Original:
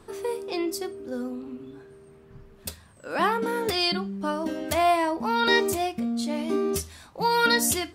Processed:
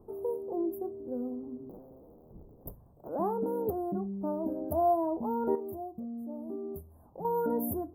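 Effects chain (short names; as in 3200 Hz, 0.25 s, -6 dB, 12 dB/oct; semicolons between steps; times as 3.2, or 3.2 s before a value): 1.69–3.09 cycle switcher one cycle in 3, inverted; inverse Chebyshev band-stop 2400–6000 Hz, stop band 70 dB; 5.55–7.25 compressor 2:1, threshold -40 dBFS, peak gain reduction 10.5 dB; gain -3.5 dB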